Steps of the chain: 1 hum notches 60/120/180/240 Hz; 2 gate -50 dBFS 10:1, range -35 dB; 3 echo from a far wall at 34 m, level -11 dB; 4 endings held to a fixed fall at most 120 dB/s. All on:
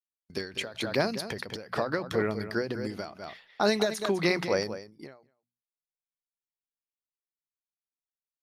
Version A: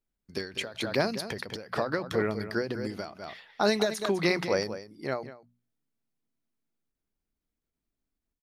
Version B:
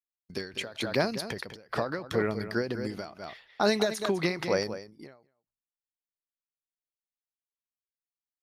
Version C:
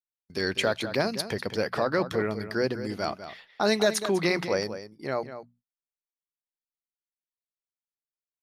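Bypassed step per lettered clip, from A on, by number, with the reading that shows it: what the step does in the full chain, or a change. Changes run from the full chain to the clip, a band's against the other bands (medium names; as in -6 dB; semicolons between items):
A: 2, momentary loudness spread change -2 LU; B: 1, momentary loudness spread change -1 LU; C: 4, crest factor change -2.0 dB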